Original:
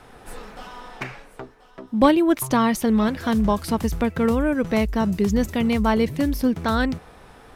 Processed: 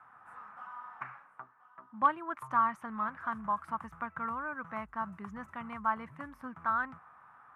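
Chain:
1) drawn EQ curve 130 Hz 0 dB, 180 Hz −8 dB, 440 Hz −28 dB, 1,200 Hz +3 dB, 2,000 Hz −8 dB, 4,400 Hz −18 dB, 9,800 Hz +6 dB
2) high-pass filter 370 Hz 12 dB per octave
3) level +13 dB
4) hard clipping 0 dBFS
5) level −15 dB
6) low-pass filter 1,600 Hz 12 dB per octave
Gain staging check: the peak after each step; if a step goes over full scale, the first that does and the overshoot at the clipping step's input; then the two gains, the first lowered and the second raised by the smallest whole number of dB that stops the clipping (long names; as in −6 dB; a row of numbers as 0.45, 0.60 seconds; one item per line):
−8.5, −9.0, +4.0, 0.0, −15.0, −14.5 dBFS
step 3, 4.0 dB
step 3 +9 dB, step 5 −11 dB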